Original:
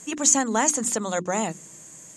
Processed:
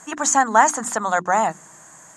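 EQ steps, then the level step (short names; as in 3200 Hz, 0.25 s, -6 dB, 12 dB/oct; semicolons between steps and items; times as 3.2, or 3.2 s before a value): band shelf 1100 Hz +13.5 dB; -2.0 dB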